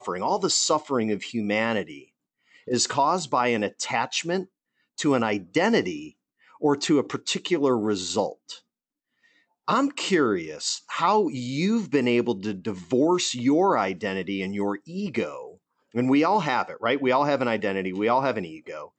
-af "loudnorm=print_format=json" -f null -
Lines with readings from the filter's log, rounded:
"input_i" : "-24.5",
"input_tp" : "-9.9",
"input_lra" : "2.4",
"input_thresh" : "-35.1",